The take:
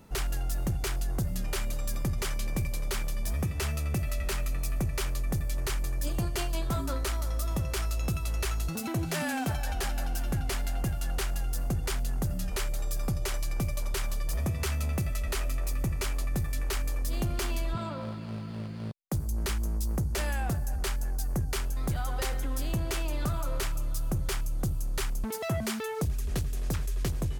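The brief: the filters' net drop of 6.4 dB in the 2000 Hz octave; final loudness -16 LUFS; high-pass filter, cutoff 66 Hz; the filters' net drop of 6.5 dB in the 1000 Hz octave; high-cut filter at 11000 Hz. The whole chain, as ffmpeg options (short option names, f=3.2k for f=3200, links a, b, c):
-af "highpass=66,lowpass=11k,equalizer=f=1k:t=o:g=-7.5,equalizer=f=2k:t=o:g=-6,volume=19.5dB"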